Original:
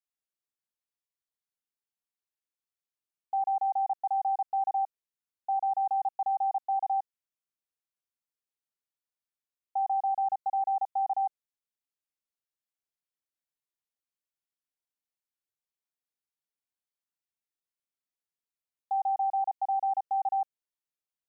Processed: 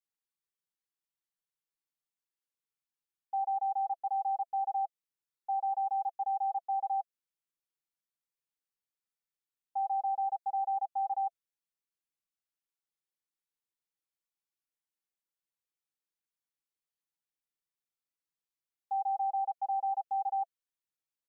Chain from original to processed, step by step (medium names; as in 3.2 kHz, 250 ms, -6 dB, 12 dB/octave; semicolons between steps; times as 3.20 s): Butterworth band-stop 650 Hz, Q 6.2; comb 6.1 ms, depth 79%; trim -5.5 dB